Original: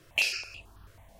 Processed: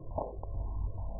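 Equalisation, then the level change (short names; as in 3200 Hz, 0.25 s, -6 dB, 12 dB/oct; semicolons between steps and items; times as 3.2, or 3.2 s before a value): brick-wall FIR low-pass 1100 Hz; low shelf 100 Hz +12 dB; notch 370 Hz, Q 12; +10.0 dB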